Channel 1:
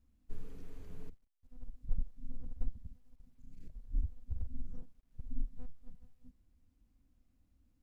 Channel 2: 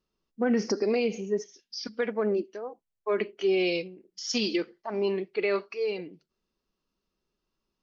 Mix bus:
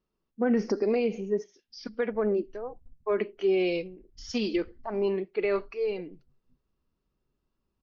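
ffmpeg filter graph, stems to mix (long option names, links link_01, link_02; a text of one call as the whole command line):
ffmpeg -i stem1.wav -i stem2.wav -filter_complex "[0:a]equalizer=frequency=140:width_type=o:width=0.31:gain=14.5,alimiter=level_in=5.5dB:limit=-24dB:level=0:latency=1:release=380,volume=-5.5dB,adelay=250,volume=-12dB,afade=type=in:start_time=1.86:duration=0.54:silence=0.298538[link_01];[1:a]volume=0.5dB[link_02];[link_01][link_02]amix=inputs=2:normalize=0,lowpass=frequency=1800:poles=1" out.wav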